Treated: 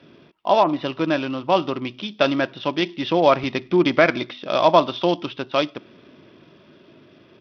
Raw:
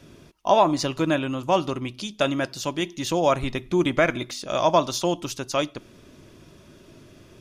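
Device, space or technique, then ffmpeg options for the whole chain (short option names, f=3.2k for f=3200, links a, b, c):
Bluetooth headset: -af "highpass=170,dynaudnorm=f=390:g=9:m=6dB,aresample=8000,aresample=44100,volume=1dB" -ar 44100 -c:a sbc -b:a 64k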